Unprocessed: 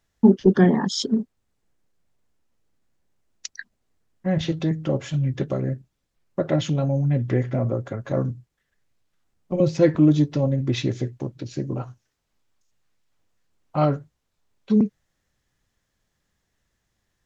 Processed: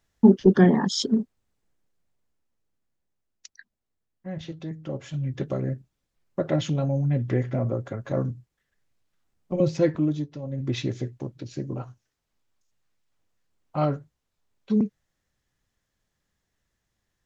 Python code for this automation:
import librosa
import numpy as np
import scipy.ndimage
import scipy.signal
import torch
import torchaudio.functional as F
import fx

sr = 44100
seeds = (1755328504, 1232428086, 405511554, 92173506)

y = fx.gain(x, sr, db=fx.line((1.21, -0.5), (3.49, -12.0), (4.63, -12.0), (5.56, -2.5), (9.73, -2.5), (10.42, -14.5), (10.64, -4.0)))